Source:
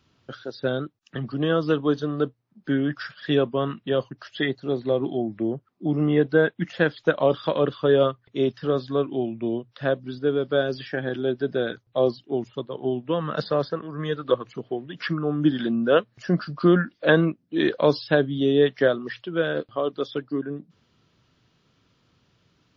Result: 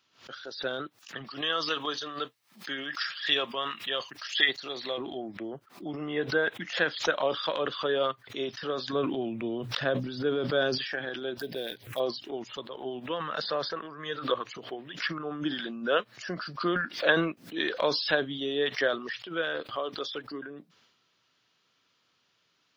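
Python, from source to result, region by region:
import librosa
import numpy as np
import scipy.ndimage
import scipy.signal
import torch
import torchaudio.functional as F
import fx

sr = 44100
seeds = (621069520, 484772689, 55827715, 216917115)

y = fx.chain(x, sr, fx.tilt_shelf(db=-8.0, hz=890.0),
    fx.notch(hz=1500.0, q=12.0), at=(1.24, 4.98))
y = fx.chain(y, sr, fx.highpass(hz=48.0, slope=12),
    fx.low_shelf(hz=300.0, db=11.0),
    fx.sustainer(db_per_s=55.0), at=(8.93, 10.78))
y = fx.chain(y, sr, fx.dead_time(dead_ms=0.053),
    fx.env_phaser(low_hz=330.0, high_hz=1300.0, full_db=-27.5), at=(11.37, 12.0))
y = fx.highpass(y, sr, hz=1300.0, slope=6)
y = fx.transient(y, sr, attack_db=2, sustain_db=8)
y = fx.pre_swell(y, sr, db_per_s=150.0)
y = F.gain(torch.from_numpy(y), -1.0).numpy()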